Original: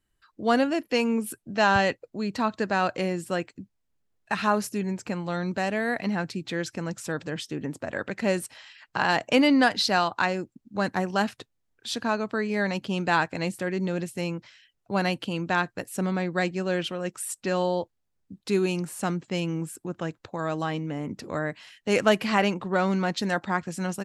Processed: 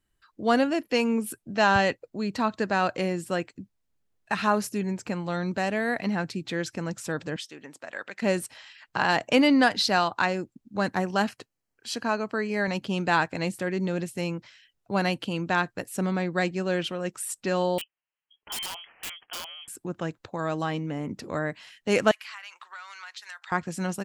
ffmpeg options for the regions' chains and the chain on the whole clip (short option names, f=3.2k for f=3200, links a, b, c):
-filter_complex "[0:a]asettb=1/sr,asplit=3[a][b][c];[a]atrim=end=7.364[d];[b]atrim=start=7.36:end=8.22,asetpts=PTS-STARTPTS,afade=t=in:d=0.004:c=qsin,afade=t=out:st=0.856:d=0.004:c=qsin,highpass=f=1.4k:p=1,highshelf=f=9.6k:g=-6[e];[c]atrim=start=8.216[f];[d][e]acrossfade=d=0.004:c1=hsin:c2=qsin[g];[g][f]acrossfade=d=0.004:c1=qsin:c2=hsin,asettb=1/sr,asplit=3[h][i][j];[h]atrim=end=11.294[k];[i]atrim=start=11.29:end=12.68,asetpts=PTS-STARTPTS,afade=t=in:d=0.004:c=qsin,afade=t=out:st=1.386:d=0.004:c=qsin,asuperstop=centerf=3600:order=4:qfactor=6.8,lowshelf=f=110:g=-9.5[l];[j]atrim=start=12.676[m];[k][l]acrossfade=d=0.004:c1=hsin:c2=qsin[n];[n][m]acrossfade=d=0.004:c1=qsin:c2=hsin,asettb=1/sr,asplit=3[o][p][q];[o]atrim=end=17.784[r];[p]atrim=start=17.78:end=19.68,asetpts=PTS-STARTPTS,afade=t=in:d=0.004:c=qsin,afade=t=out:st=1.896:d=0.004:c=qsin,highpass=640,lowpass=f=3k:t=q:w=0.5098,lowpass=f=3k:t=q:w=0.6013,lowpass=f=3k:t=q:w=0.9,lowpass=f=3k:t=q:w=2.563,afreqshift=-3500,aeval=exprs='(mod(26.6*val(0)+1,2)-1)/26.6':c=same[s];[q]atrim=start=19.676[t];[r][s]acrossfade=d=0.004:c1=hsin:c2=qsin[u];[u][t]acrossfade=d=0.004:c1=qsin:c2=hsin,asettb=1/sr,asplit=3[v][w][x];[v]atrim=end=22.114[y];[w]atrim=start=22.11:end=23.52,asetpts=PTS-STARTPTS,afade=t=in:d=0.004:c=qsin,afade=t=out:st=1.406:d=0.004:c=qsin,highpass=f=1.2k:w=0.5412,highpass=f=1.2k:w=1.3066,acompressor=threshold=-38dB:ratio=6:attack=3.2:release=140:knee=1:detection=peak[z];[x]atrim=start=23.516[aa];[y][z]acrossfade=d=0.004:c1=hsin:c2=qsin[ab];[ab][aa]acrossfade=d=0.004:c1=qsin:c2=hsin"